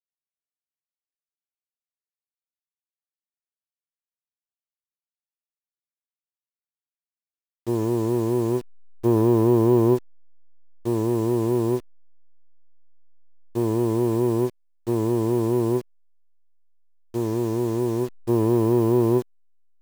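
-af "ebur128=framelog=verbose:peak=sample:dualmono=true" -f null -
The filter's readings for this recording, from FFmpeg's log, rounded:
Integrated loudness:
  I:         -19.6 LUFS
  Threshold: -30.0 LUFS
Loudness range:
  LRA:         6.2 LU
  Threshold: -41.8 LUFS
  LRA low:   -25.4 LUFS
  LRA high:  -19.1 LUFS
Sample peak:
  Peak:       -7.9 dBFS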